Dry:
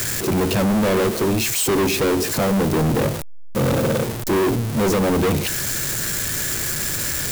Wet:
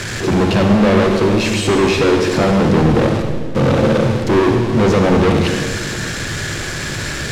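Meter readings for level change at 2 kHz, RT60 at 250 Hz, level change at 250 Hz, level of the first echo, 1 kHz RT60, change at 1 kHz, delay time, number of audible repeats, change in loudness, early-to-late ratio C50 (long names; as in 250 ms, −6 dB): +6.0 dB, 2.2 s, +6.5 dB, no echo audible, 1.7 s, +6.0 dB, no echo audible, no echo audible, +5.0 dB, 4.0 dB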